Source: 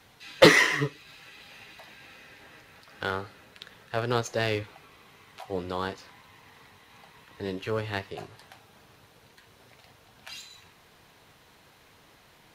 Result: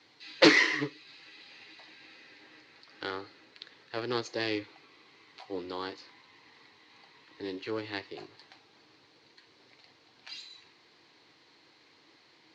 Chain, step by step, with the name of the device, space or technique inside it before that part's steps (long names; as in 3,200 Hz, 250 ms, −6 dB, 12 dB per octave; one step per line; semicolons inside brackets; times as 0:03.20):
full-range speaker at full volume (highs frequency-modulated by the lows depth 0.6 ms; loudspeaker in its box 170–6,200 Hz, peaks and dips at 190 Hz −8 dB, 320 Hz +9 dB, 650 Hz −5 dB, 1,400 Hz −3 dB, 2,100 Hz +4 dB, 4,400 Hz +10 dB)
level −5.5 dB